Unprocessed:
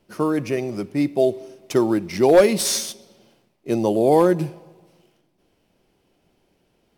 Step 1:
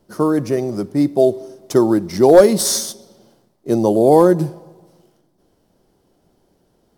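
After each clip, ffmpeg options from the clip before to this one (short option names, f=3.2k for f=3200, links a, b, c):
-af "equalizer=f=2.5k:t=o:w=0.74:g=-14,volume=5dB"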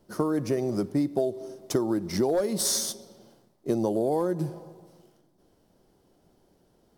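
-af "acompressor=threshold=-18dB:ratio=16,volume=-3.5dB"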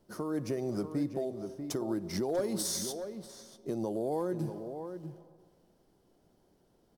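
-filter_complex "[0:a]alimiter=limit=-19dB:level=0:latency=1:release=207,asplit=2[a][b];[b]adelay=641.4,volume=-8dB,highshelf=f=4k:g=-14.4[c];[a][c]amix=inputs=2:normalize=0,volume=-5dB"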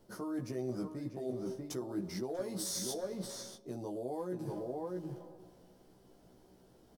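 -filter_complex "[0:a]areverse,acompressor=threshold=-41dB:ratio=10,areverse,asplit=2[a][b];[b]adelay=16,volume=-2.5dB[c];[a][c]amix=inputs=2:normalize=0,volume=4dB"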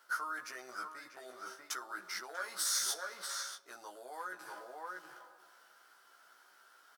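-af "highpass=f=1.4k:t=q:w=5.8,volume=5dB"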